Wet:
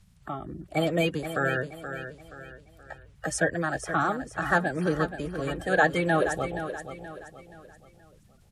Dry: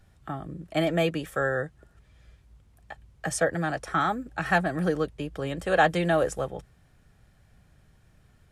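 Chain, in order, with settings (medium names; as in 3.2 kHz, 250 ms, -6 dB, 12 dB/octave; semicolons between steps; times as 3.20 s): coarse spectral quantiser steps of 30 dB; feedback delay 476 ms, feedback 39%, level -10 dB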